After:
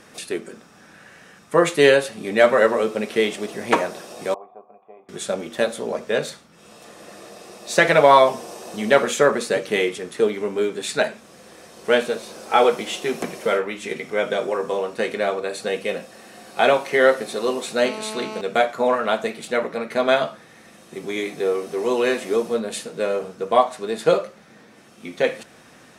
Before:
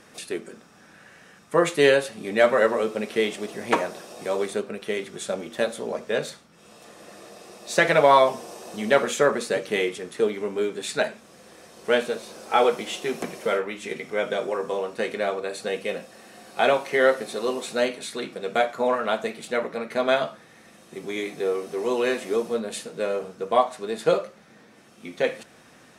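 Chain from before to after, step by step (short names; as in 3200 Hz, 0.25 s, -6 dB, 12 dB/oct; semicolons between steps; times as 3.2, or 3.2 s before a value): 4.34–5.09 vocal tract filter a; 17.85–18.41 GSM buzz -36 dBFS; gain +3.5 dB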